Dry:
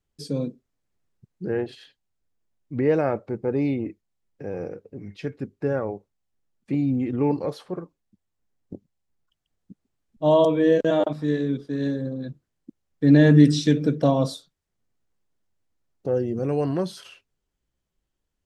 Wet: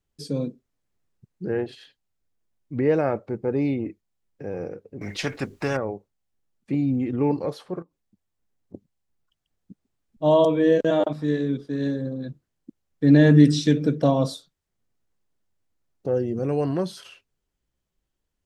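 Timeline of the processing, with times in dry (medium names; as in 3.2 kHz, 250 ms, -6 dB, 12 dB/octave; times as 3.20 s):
5.01–5.77 s: spectrum-flattening compressor 2:1
7.82–8.74 s: compression 3:1, threshold -55 dBFS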